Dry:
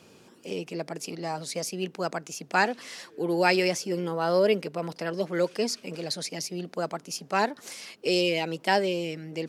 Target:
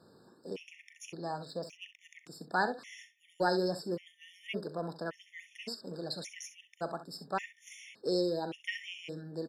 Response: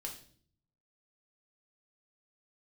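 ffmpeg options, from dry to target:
-filter_complex "[0:a]highshelf=f=6.7k:g=-7,asplit=2[a][b];[b]asoftclip=type=tanh:threshold=-20dB,volume=-9dB[c];[a][c]amix=inputs=2:normalize=0,asettb=1/sr,asplit=3[d][e][f];[d]atrim=end=1.454[g];[e]atrim=start=1.45:end=2.09,asetpts=PTS-STARTPTS,afade=t=in:d=0.004:c=qsin,afade=t=out:st=0.636:d=0.004:c=qsin,adynamicsmooth=sensitivity=4:basefreq=3.4k[h];[f]atrim=start=2.086[i];[g][h]acrossfade=d=0.004:c1=hsin:c2=qsin[j];[j][i]acrossfade=d=0.004:c1=qsin:c2=hsin,aecho=1:1:39|65:0.178|0.237,afftfilt=real='re*gt(sin(2*PI*0.88*pts/sr)*(1-2*mod(floor(b*sr/1024/1800),2)),0)':imag='im*gt(sin(2*PI*0.88*pts/sr)*(1-2*mod(floor(b*sr/1024/1800),2)),0)':win_size=1024:overlap=0.75,volume=-8dB"

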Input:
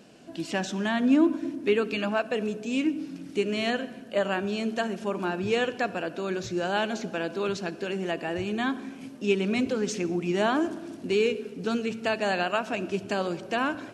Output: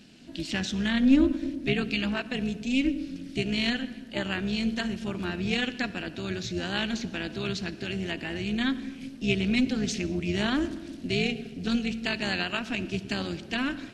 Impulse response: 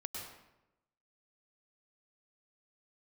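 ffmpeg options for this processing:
-filter_complex "[0:a]tremolo=f=270:d=0.71,equalizer=f=125:t=o:w=1:g=3,equalizer=f=250:t=o:w=1:g=7,equalizer=f=500:t=o:w=1:g=-8,equalizer=f=1k:t=o:w=1:g=-7,equalizer=f=2k:t=o:w=1:g=4,equalizer=f=4k:t=o:w=1:g=8,asplit=2[a][b];[1:a]atrim=start_sample=2205[c];[b][c]afir=irnorm=-1:irlink=0,volume=-20dB[d];[a][d]amix=inputs=2:normalize=0"

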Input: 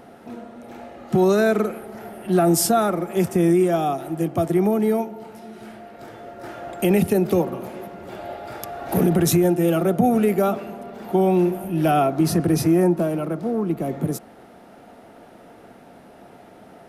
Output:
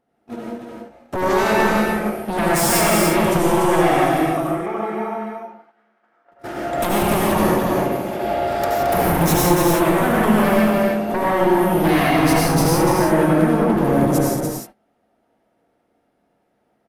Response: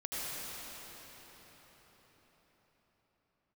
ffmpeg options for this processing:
-filter_complex "[0:a]agate=range=-35dB:threshold=-34dB:ratio=16:detection=peak,acompressor=threshold=-25dB:ratio=2,asettb=1/sr,asplit=3[a][b][c];[a]atrim=end=4.184[d];[b]atrim=start=4.18:end=6.32,asetpts=PTS-STARTPTS,afade=t=in:d=0.004:c=qsin,afade=t=out:st=2.136:d=0.004:c=qsin,bandpass=f=1.3k:t=q:w=1.7:csg=0[e];[c]atrim=start=6.316[f];[d][e]acrossfade=d=0.004:c1=hsin:c2=qsin[g];[g][f]acrossfade=d=0.004:c1=qsin:c2=hsin,aeval=exprs='0.188*sin(PI/2*2.82*val(0)/0.188)':c=same,aecho=1:1:221.6|291.5:0.398|0.562[h];[1:a]atrim=start_sample=2205,afade=t=out:st=0.24:d=0.01,atrim=end_sample=11025[i];[h][i]afir=irnorm=-1:irlink=0"

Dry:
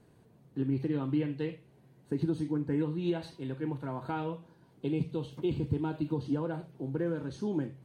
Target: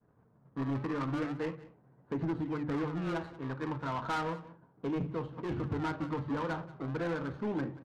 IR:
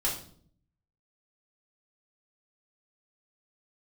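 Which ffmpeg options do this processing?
-filter_complex "[0:a]asplit=2[a][b];[b]acrusher=samples=35:mix=1:aa=0.000001:lfo=1:lforange=56:lforate=0.35,volume=-10dB[c];[a][c]amix=inputs=2:normalize=0,acontrast=66,agate=range=-33dB:threshold=-47dB:ratio=3:detection=peak,equalizer=f=1.3k:w=0.92:g=13,bandreject=f=50:t=h:w=6,bandreject=f=100:t=h:w=6,bandreject=f=150:t=h:w=6,bandreject=f=200:t=h:w=6,bandreject=f=250:t=h:w=6,bandreject=f=300:t=h:w=6,bandreject=f=350:t=h:w=6,asoftclip=type=tanh:threshold=-20dB,adynamicsmooth=sensitivity=3:basefreq=1.1k,bandreject=f=370:w=12,aecho=1:1:183:0.119,volume=-7.5dB"

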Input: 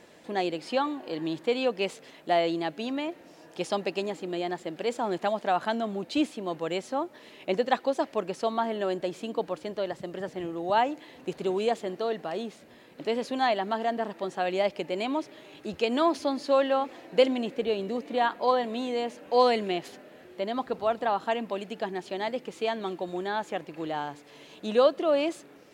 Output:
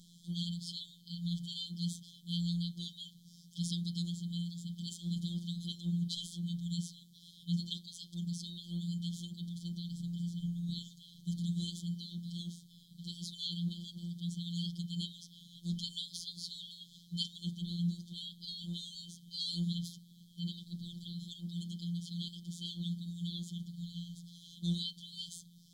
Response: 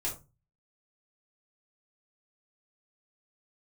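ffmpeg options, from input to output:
-filter_complex "[0:a]asplit=2[a][b];[1:a]atrim=start_sample=2205,lowpass=2.1k[c];[b][c]afir=irnorm=-1:irlink=0,volume=-5dB[d];[a][d]amix=inputs=2:normalize=0,afftfilt=real='re*(1-between(b*sr/4096,220,3100))':imag='im*(1-between(b*sr/4096,220,3100))':win_size=4096:overlap=0.75,afftfilt=real='hypot(re,im)*cos(PI*b)':imag='0':win_size=1024:overlap=0.75,volume=3.5dB"

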